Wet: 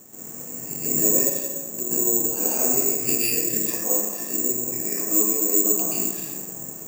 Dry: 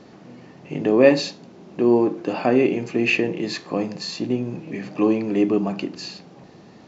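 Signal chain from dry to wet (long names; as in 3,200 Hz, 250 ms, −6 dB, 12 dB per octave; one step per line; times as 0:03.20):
0:03.58–0:05.72: three-way crossover with the lows and the highs turned down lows −12 dB, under 300 Hz, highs −24 dB, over 2,700 Hz
downward compressor 4 to 1, threshold −29 dBFS, peak gain reduction 17.5 dB
dense smooth reverb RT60 1.4 s, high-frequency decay 0.5×, pre-delay 115 ms, DRR −9.5 dB
bad sample-rate conversion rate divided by 6×, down filtered, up zero stuff
level −9 dB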